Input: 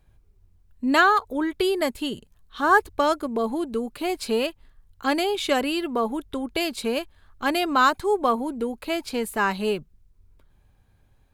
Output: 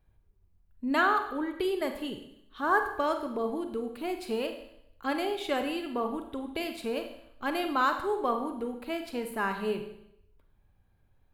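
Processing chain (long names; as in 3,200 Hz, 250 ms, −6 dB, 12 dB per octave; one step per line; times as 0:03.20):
parametric band 6,600 Hz −8 dB 1.5 octaves
four-comb reverb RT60 0.76 s, combs from 33 ms, DRR 6 dB
level −7.5 dB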